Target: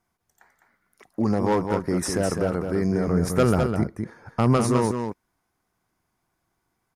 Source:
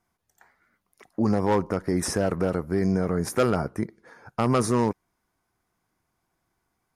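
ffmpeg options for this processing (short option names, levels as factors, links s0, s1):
-filter_complex "[0:a]asettb=1/sr,asplit=3[s0][s1][s2];[s0]atrim=end=3.074[s3];[s1]atrim=start=3.07:end=4.57,asetpts=PTS-STARTPTS,afade=t=in:d=0.004:c=qsin,afade=t=out:st=1.496:d=0.004:c=qsin,lowshelf=f=200:g=8.5[s4];[s2]atrim=start=4.566[s5];[s3][s4]acrossfade=d=0.004:c1=hsin:c2=qsin[s6];[s6][s5]acrossfade=d=0.004:c1=qsin:c2=hsin,asplit=2[s7][s8];[s8]aecho=0:1:206:0.501[s9];[s7][s9]amix=inputs=2:normalize=0"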